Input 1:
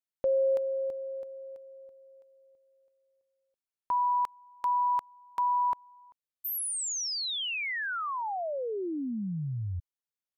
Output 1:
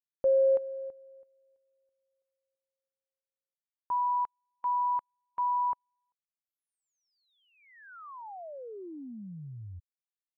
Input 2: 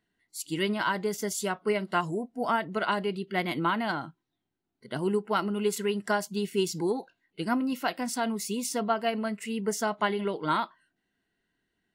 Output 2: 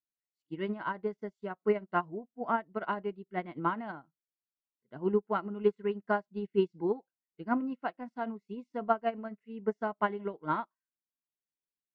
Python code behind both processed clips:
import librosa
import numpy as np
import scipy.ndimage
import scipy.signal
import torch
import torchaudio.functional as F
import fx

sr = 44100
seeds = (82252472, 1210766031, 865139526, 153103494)

y = scipy.signal.sosfilt(scipy.signal.butter(2, 1500.0, 'lowpass', fs=sr, output='sos'), x)
y = fx.upward_expand(y, sr, threshold_db=-44.0, expansion=2.5)
y = y * 10.0 ** (2.5 / 20.0)